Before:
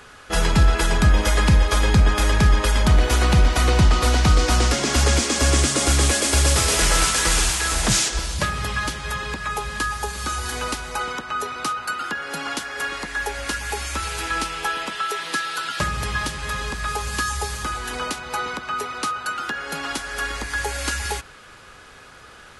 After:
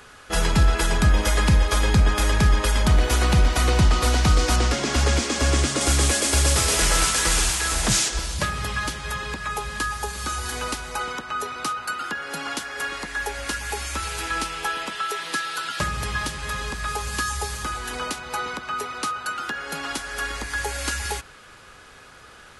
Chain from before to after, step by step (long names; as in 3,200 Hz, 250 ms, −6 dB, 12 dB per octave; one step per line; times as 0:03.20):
high-shelf EQ 8,400 Hz +4 dB, from 0:04.56 −8.5 dB, from 0:05.81 +2.5 dB
level −2 dB